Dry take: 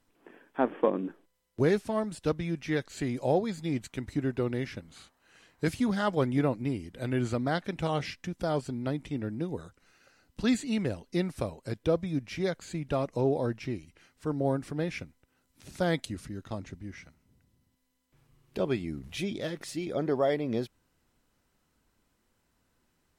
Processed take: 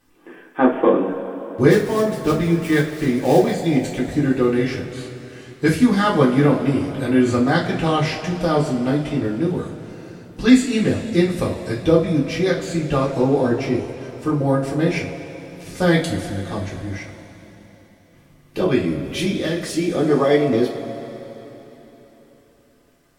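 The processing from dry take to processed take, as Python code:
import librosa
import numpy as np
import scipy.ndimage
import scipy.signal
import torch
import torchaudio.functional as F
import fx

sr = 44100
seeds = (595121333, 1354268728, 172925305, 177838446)

y = fx.dead_time(x, sr, dead_ms=0.099, at=(1.7, 3.53))
y = fx.rev_double_slope(y, sr, seeds[0], early_s=0.28, late_s=3.9, knee_db=-19, drr_db=-6.0)
y = y * 10.0 ** (5.5 / 20.0)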